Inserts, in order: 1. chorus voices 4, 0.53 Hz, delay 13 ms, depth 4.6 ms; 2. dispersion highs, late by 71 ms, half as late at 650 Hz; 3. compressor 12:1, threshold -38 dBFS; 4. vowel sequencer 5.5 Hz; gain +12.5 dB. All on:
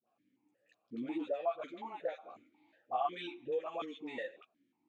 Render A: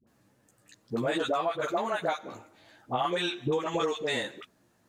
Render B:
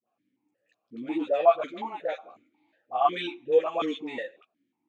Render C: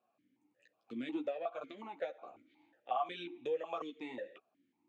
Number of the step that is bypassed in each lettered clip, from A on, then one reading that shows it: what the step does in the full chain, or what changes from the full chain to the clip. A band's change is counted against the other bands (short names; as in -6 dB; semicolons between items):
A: 4, 125 Hz band +14.0 dB; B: 3, mean gain reduction 8.5 dB; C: 2, loudness change -1.5 LU